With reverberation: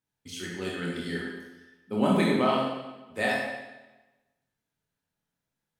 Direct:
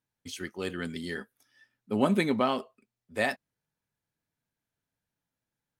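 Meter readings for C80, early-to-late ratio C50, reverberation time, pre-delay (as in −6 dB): 3.0 dB, 0.0 dB, 1.1 s, 23 ms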